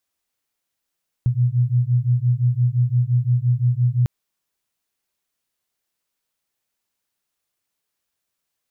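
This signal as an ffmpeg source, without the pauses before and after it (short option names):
-f lavfi -i "aevalsrc='0.119*(sin(2*PI*120*t)+sin(2*PI*125.8*t))':d=2.8:s=44100"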